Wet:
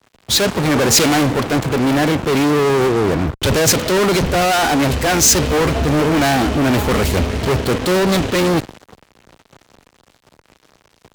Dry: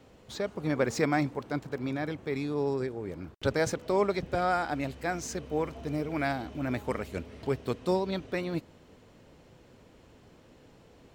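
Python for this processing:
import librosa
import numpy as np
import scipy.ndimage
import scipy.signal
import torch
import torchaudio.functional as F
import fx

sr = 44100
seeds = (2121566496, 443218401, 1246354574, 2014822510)

y = fx.fuzz(x, sr, gain_db=48.0, gate_db=-51.0)
y = fx.band_widen(y, sr, depth_pct=70)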